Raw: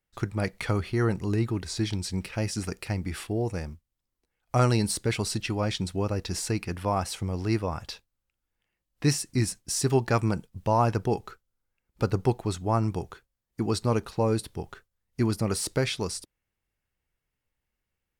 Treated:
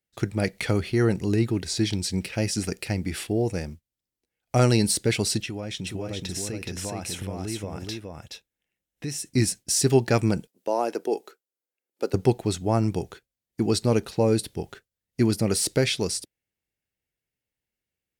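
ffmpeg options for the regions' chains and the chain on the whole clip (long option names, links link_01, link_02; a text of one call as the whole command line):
ffmpeg -i in.wav -filter_complex "[0:a]asettb=1/sr,asplit=3[link_01][link_02][link_03];[link_01]atrim=end=5.424[link_04];[link_02]atrim=start=5.42:end=9.32,asetpts=PTS-STARTPTS,afade=type=in:duration=0.004:curve=qsin,afade=type=out:start_time=3.896:duration=0.004:curve=qsin,bandreject=frequency=4600:width=7.2,acompressor=threshold=-34dB:ratio=4:attack=3.2:release=140:knee=1:detection=peak,aecho=1:1:421:0.668,atrim=end_sample=171990[link_05];[link_03]atrim=start=9.316[link_06];[link_04][link_05]acrossfade=duration=0.004:curve1=hsin:curve2=qsin[link_07];[link_07][link_06]acrossfade=duration=0.004:curve1=qsin:curve2=hsin,asettb=1/sr,asplit=3[link_08][link_09][link_10];[link_08]atrim=end=10.474[link_11];[link_09]atrim=start=10.47:end=12.14,asetpts=PTS-STARTPTS,afade=type=in:duration=0.004:curve=qsin,afade=type=out:start_time=1.666:duration=0.004:curve=qsin,highpass=frequency=320:width=0.5412,highpass=frequency=320:width=1.3066,equalizer=frequency=2600:width=0.31:gain=-6[link_12];[link_10]atrim=start=12.136[link_13];[link_11][link_12]acrossfade=duration=0.004:curve1=hsin:curve2=qsin[link_14];[link_14][link_13]acrossfade=duration=0.004:curve1=qsin:curve2=hsin,agate=range=-7dB:threshold=-45dB:ratio=16:detection=peak,highpass=frequency=140:poles=1,equalizer=frequency=1100:width=1.6:gain=-10.5,volume=6dB" out.wav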